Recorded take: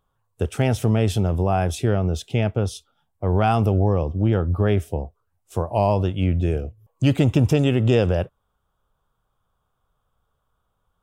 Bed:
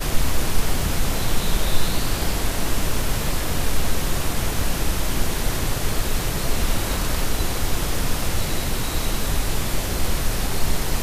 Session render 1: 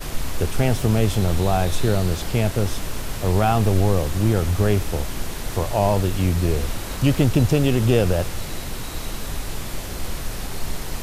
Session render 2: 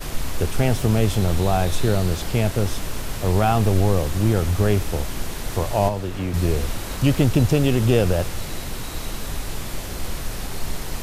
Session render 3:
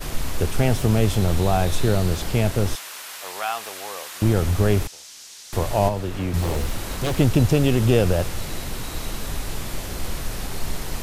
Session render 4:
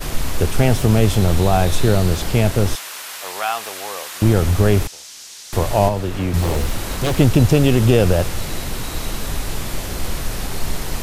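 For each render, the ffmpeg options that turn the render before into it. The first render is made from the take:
-filter_complex "[1:a]volume=-6dB[a];[0:a][a]amix=inputs=2:normalize=0"
-filter_complex "[0:a]asettb=1/sr,asplit=3[a][b][c];[a]atrim=end=5.884[d];[b]atrim=start=5.88:end=6.34,asetpts=PTS-STARTPTS,afade=t=in:d=0.004:c=qsin,afade=t=out:st=0.456:d=0.004:c=qsin,acrossover=split=220|2700|7300[e][f][g][h];[e]acompressor=threshold=-29dB:ratio=3[i];[f]acompressor=threshold=-26dB:ratio=3[j];[g]acompressor=threshold=-49dB:ratio=3[k];[h]acompressor=threshold=-55dB:ratio=3[l];[i][j][k][l]amix=inputs=4:normalize=0[m];[c]atrim=start=6.336[n];[d][m]acrossfade=d=0.004:c1=hsin:c2=qsin[o];[o][n]acrossfade=d=0.004:c1=qsin:c2=hsin"
-filter_complex "[0:a]asettb=1/sr,asplit=3[a][b][c];[a]atrim=end=2.754[d];[b]atrim=start=2.75:end=4.22,asetpts=PTS-STARTPTS,afade=t=in:d=0.004:c=qsin,afade=t=out:st=1.466:d=0.004:c=qsin,highpass=1.1k[e];[c]atrim=start=4.216[f];[d][e]acrossfade=d=0.004:c1=hsin:c2=qsin[g];[g][f]acrossfade=d=0.004:c1=qsin:c2=hsin,asettb=1/sr,asplit=3[h][i][j];[h]atrim=end=4.874[k];[i]atrim=start=4.87:end=5.53,asetpts=PTS-STARTPTS,afade=t=in:d=0.004:c=qsin,afade=t=out:st=0.656:d=0.004:c=qsin,bandpass=f=5.8k:t=q:w=1.6[l];[j]atrim=start=5.526[m];[k][l]acrossfade=d=0.004:c1=hsin:c2=qsin[n];[n][m]acrossfade=d=0.004:c1=qsin:c2=hsin,asettb=1/sr,asplit=3[o][p][q];[o]atrim=end=6.414[r];[p]atrim=start=6.41:end=7.16,asetpts=PTS-STARTPTS,afade=t=in:d=0.004:c=qsin,afade=t=out:st=0.746:d=0.004:c=qsin,aeval=exprs='0.133*(abs(mod(val(0)/0.133+3,4)-2)-1)':c=same[s];[q]atrim=start=7.156[t];[r][s]acrossfade=d=0.004:c1=hsin:c2=qsin[u];[u][t]acrossfade=d=0.004:c1=qsin:c2=hsin"
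-af "volume=4.5dB,alimiter=limit=-2dB:level=0:latency=1"

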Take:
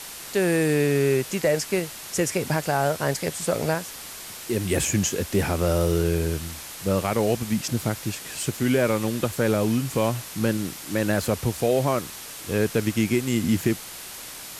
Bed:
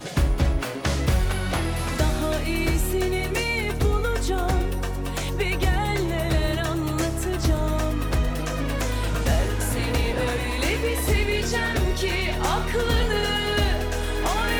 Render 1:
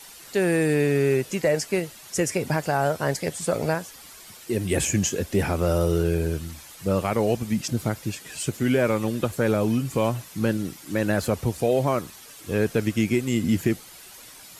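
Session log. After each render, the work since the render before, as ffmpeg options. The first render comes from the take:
-af "afftdn=nr=10:nf=-39"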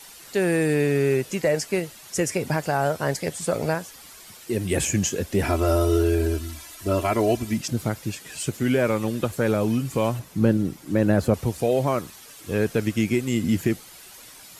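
-filter_complex "[0:a]asettb=1/sr,asplit=3[a][b][c];[a]atrim=end=5.434[d];[b]atrim=start=5.43:end=7.58,asetpts=PTS-STARTPTS,afade=t=in:d=0.004:c=qsin,afade=t=out:st=2.146:d=0.004:c=qsin,aecho=1:1:3:0.92,atrim=end_sample=94815[e];[c]atrim=start=7.576[f];[d][e]acrossfade=d=0.004:c1=hsin:c2=qsin[g];[g][f]acrossfade=d=0.004:c1=qsin:c2=hsin,asettb=1/sr,asplit=3[h][i][j];[h]atrim=end=10.194[k];[i]atrim=start=10.19:end=11.34,asetpts=PTS-STARTPTS,afade=t=in:d=0.004:c=qsin,afade=t=out:st=1.146:d=0.004:c=qsin,tiltshelf=f=970:g=5.5[l];[j]atrim=start=11.336[m];[k][l]acrossfade=d=0.004:c1=hsin:c2=qsin[n];[n][m]acrossfade=d=0.004:c1=qsin:c2=hsin"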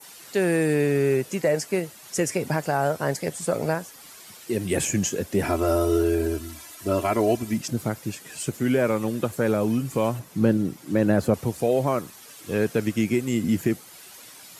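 -af "adynamicequalizer=threshold=0.00501:dfrequency=3500:dqfactor=0.78:tfrequency=3500:tqfactor=0.78:attack=5:release=100:ratio=0.375:range=2:mode=cutabove:tftype=bell,highpass=110"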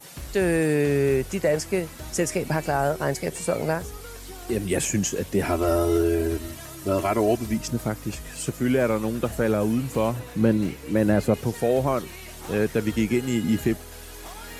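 -filter_complex "[1:a]volume=-17dB[a];[0:a][a]amix=inputs=2:normalize=0"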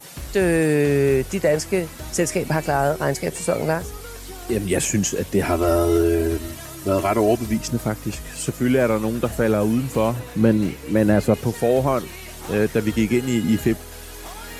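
-af "volume=3.5dB"

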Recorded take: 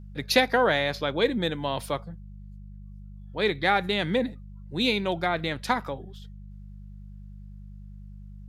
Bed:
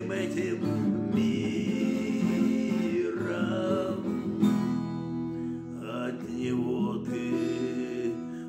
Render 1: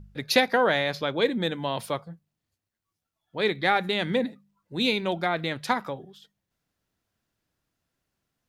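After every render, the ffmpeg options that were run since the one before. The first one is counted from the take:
-af "bandreject=f=50:t=h:w=4,bandreject=f=100:t=h:w=4,bandreject=f=150:t=h:w=4,bandreject=f=200:t=h:w=4"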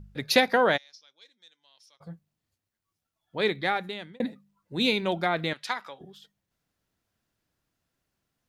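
-filter_complex "[0:a]asplit=3[a][b][c];[a]afade=t=out:st=0.76:d=0.02[d];[b]bandpass=f=5.6k:t=q:w=12,afade=t=in:st=0.76:d=0.02,afade=t=out:st=2:d=0.02[e];[c]afade=t=in:st=2:d=0.02[f];[d][e][f]amix=inputs=3:normalize=0,asettb=1/sr,asplit=3[g][h][i];[g]atrim=end=5.534[j];[h]atrim=start=5.53:end=6.01,asetpts=PTS-STARTPTS,afade=t=in:d=0.004:c=qsin,afade=t=out:st=0.476:d=0.004:c=qsin,bandpass=f=3.5k:t=q:w=0.53[k];[i]atrim=start=6.006[l];[j][k]acrossfade=d=0.004:c1=hsin:c2=qsin[m];[m][l]acrossfade=d=0.004:c1=qsin:c2=hsin,asplit=2[n][o];[n]atrim=end=4.2,asetpts=PTS-STARTPTS,afade=t=out:st=3.39:d=0.81[p];[o]atrim=start=4.2,asetpts=PTS-STARTPTS,afade=t=in:d=0.004:c=hsin[q];[p][q]concat=n=2:v=0:a=1"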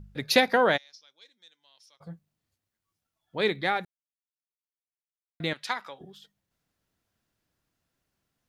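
-filter_complex "[0:a]asplit=3[a][b][c];[a]atrim=end=3.85,asetpts=PTS-STARTPTS,afade=t=out:st=3.846:d=0.004:c=hsin[d];[b]atrim=start=3.85:end=5.4,asetpts=PTS-STARTPTS,volume=0[e];[c]atrim=start=5.4,asetpts=PTS-STARTPTS,afade=t=in:d=0.004:c=hsin[f];[d][e][f]concat=n=3:v=0:a=1"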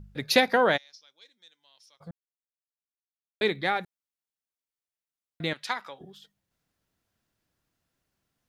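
-filter_complex "[0:a]asplit=3[a][b][c];[a]atrim=end=2.11,asetpts=PTS-STARTPTS,afade=t=out:st=2.106:d=0.004:c=hsin[d];[b]atrim=start=2.11:end=3.41,asetpts=PTS-STARTPTS,volume=0[e];[c]atrim=start=3.41,asetpts=PTS-STARTPTS,afade=t=in:d=0.004:c=hsin[f];[d][e][f]concat=n=3:v=0:a=1"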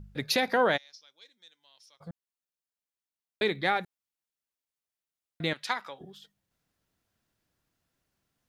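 -af "alimiter=limit=-14.5dB:level=0:latency=1:release=102"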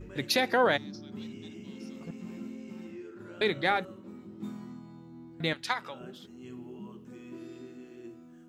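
-filter_complex "[1:a]volume=-15.5dB[a];[0:a][a]amix=inputs=2:normalize=0"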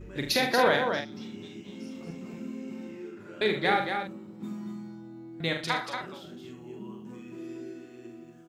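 -filter_complex "[0:a]asplit=2[a][b];[b]adelay=42,volume=-5dB[c];[a][c]amix=inputs=2:normalize=0,aecho=1:1:75.8|233.2:0.282|0.501"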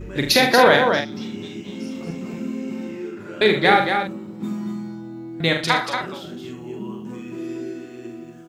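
-af "volume=10dB,alimiter=limit=-2dB:level=0:latency=1"

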